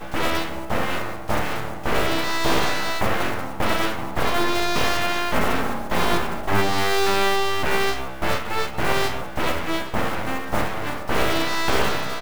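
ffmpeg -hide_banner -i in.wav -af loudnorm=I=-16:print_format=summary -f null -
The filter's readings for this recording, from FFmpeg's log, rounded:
Input Integrated:    -23.8 LUFS
Input True Peak:      -4.6 dBTP
Input LRA:             2.1 LU
Input Threshold:     -33.8 LUFS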